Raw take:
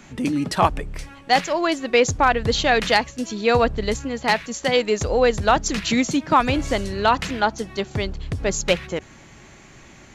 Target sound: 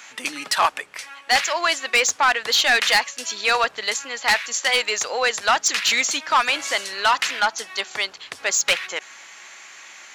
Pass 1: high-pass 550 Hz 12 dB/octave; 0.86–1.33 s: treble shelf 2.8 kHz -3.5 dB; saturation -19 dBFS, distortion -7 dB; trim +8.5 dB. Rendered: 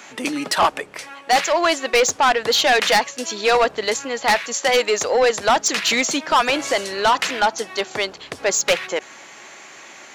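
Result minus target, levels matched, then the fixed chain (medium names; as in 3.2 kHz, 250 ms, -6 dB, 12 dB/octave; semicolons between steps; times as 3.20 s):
500 Hz band +8.0 dB
high-pass 1.2 kHz 12 dB/octave; 0.86–1.33 s: treble shelf 2.8 kHz -3.5 dB; saturation -19 dBFS, distortion -10 dB; trim +8.5 dB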